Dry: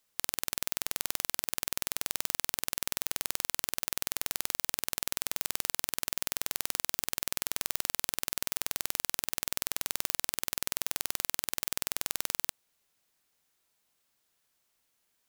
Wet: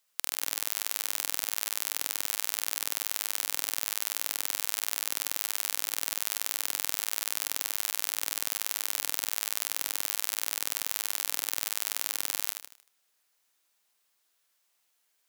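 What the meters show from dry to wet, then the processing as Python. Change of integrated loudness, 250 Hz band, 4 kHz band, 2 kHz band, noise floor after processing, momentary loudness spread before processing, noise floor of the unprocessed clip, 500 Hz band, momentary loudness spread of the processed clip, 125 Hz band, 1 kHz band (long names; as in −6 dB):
+2.5 dB, −6.5 dB, +2.5 dB, +2.0 dB, −74 dBFS, 1 LU, −76 dBFS, −2.0 dB, 0 LU, below −10 dB, +1.0 dB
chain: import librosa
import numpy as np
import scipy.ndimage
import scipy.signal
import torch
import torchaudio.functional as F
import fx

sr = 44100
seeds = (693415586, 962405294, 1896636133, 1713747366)

p1 = fx.highpass(x, sr, hz=670.0, slope=6)
p2 = p1 + fx.echo_feedback(p1, sr, ms=77, feedback_pct=41, wet_db=-5.0, dry=0)
y = p2 * 10.0 ** (1.0 / 20.0)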